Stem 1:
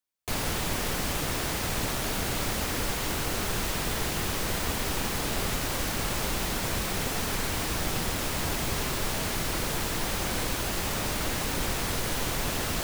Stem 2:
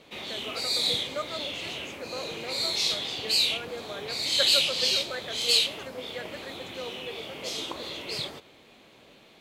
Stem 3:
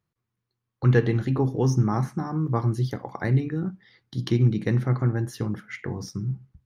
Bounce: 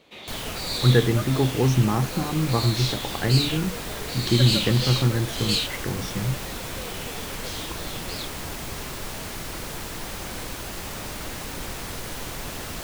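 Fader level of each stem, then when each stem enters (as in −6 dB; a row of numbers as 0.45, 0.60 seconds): −4.0, −3.0, +1.5 decibels; 0.00, 0.00, 0.00 seconds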